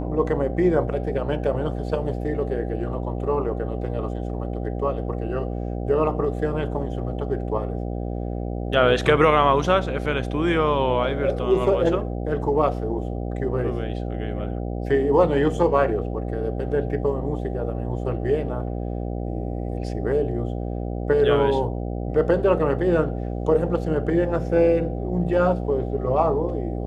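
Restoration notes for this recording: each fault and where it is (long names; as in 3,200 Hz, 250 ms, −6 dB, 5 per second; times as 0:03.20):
mains buzz 60 Hz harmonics 13 −28 dBFS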